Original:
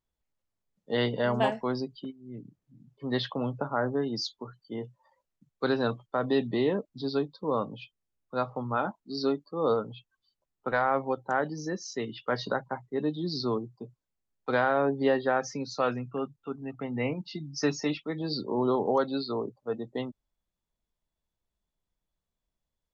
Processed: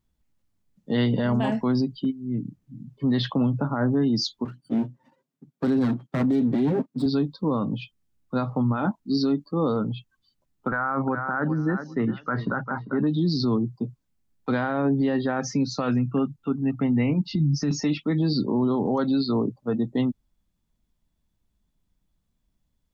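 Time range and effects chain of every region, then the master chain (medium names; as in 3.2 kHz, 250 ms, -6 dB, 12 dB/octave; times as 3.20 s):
4.45–7.06 s: comb filter that takes the minimum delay 7.5 ms + high-pass 160 Hz 24 dB/octave + tilt shelf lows +5.5 dB, about 740 Hz
10.68–13.07 s: resonant low-pass 1.4 kHz, resonance Q 3.9 + feedback delay 396 ms, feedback 16%, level -17 dB
17.29–17.71 s: compression, threshold -37 dBFS + bass shelf 260 Hz +12 dB
whole clip: resonant low shelf 340 Hz +7.5 dB, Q 1.5; peak limiter -22 dBFS; trim +6 dB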